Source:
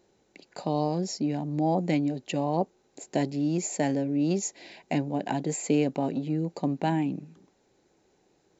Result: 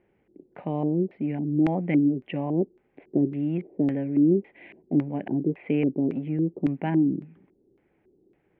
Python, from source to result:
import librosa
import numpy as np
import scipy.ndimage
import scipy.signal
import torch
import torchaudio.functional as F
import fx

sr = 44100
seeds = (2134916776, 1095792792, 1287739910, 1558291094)

y = scipy.signal.sosfilt(scipy.signal.cheby1(5, 1.0, 3300.0, 'lowpass', fs=sr, output='sos'), x)
y = fx.low_shelf(y, sr, hz=460.0, db=8.0)
y = fx.filter_lfo_lowpass(y, sr, shape='square', hz=1.8, low_hz=360.0, high_hz=2200.0, q=3.0)
y = y * 10.0 ** (-6.0 / 20.0)